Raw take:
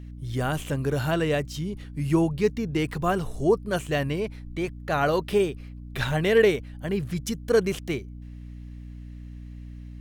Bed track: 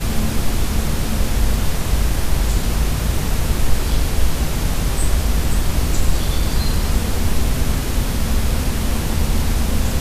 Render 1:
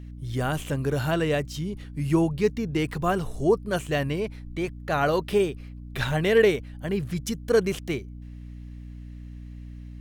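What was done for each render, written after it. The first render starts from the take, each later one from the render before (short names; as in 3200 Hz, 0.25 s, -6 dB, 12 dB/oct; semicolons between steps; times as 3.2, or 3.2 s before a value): nothing audible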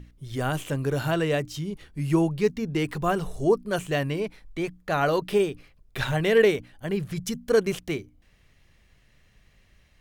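notches 60/120/180/240/300 Hz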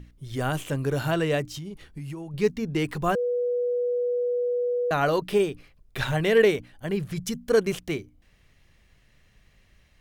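1.55–2.34 compressor 16:1, threshold -32 dBFS; 3.15–4.91 bleep 488 Hz -22.5 dBFS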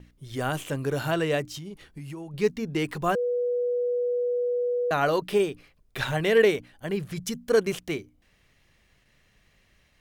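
gate with hold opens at -51 dBFS; low shelf 130 Hz -7.5 dB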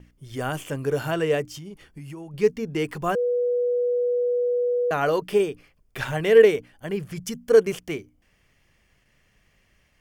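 notch 3900 Hz, Q 5.4; dynamic EQ 450 Hz, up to +7 dB, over -37 dBFS, Q 6.8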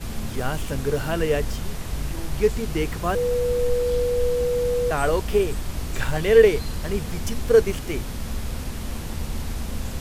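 add bed track -11 dB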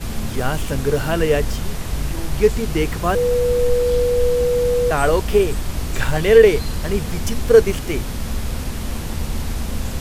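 gain +5 dB; limiter -1 dBFS, peak gain reduction 2 dB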